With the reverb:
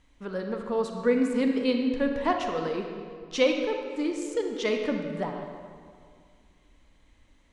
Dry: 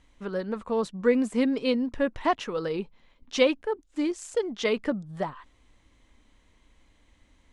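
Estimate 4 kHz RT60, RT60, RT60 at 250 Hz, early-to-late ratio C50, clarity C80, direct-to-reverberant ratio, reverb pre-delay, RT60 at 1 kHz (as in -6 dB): 1.4 s, 2.1 s, 2.3 s, 4.0 dB, 5.0 dB, 3.0 dB, 33 ms, 2.0 s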